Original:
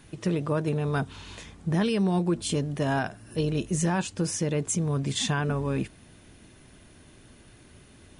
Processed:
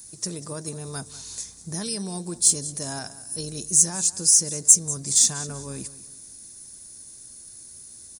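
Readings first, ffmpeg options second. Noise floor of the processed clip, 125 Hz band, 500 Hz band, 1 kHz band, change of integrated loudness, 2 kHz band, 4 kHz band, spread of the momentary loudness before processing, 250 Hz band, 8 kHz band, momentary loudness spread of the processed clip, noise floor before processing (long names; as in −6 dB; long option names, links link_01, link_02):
−45 dBFS, −8.5 dB, −8.5 dB, −8.5 dB, +7.5 dB, −8.5 dB, +5.0 dB, 7 LU, −8.5 dB, +17.0 dB, 18 LU, −54 dBFS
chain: -af "aecho=1:1:192|384|576:0.141|0.0452|0.0145,aexciter=amount=11.7:drive=8.6:freq=4600,volume=-8.5dB"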